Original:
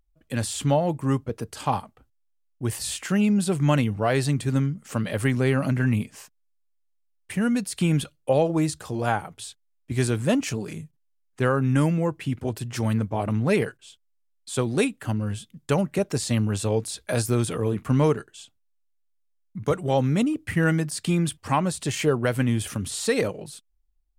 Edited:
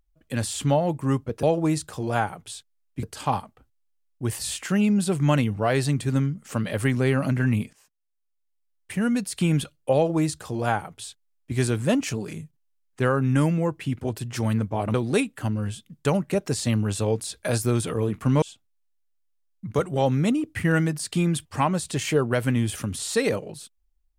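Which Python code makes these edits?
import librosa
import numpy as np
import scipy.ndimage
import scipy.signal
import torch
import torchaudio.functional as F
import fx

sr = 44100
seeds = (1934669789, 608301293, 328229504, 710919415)

y = fx.edit(x, sr, fx.fade_in_from(start_s=6.13, length_s=1.65, curve='qsin', floor_db=-19.0),
    fx.duplicate(start_s=8.35, length_s=1.6, to_s=1.43),
    fx.cut(start_s=13.34, length_s=1.24),
    fx.cut(start_s=18.06, length_s=0.28), tone=tone)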